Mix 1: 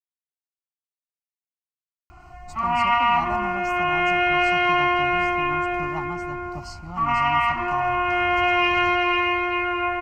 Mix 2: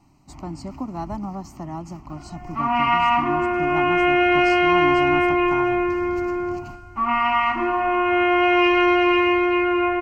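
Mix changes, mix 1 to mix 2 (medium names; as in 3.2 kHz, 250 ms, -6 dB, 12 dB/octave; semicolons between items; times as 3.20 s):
speech: entry -2.20 s; master: add peaking EQ 300 Hz +12 dB 0.93 oct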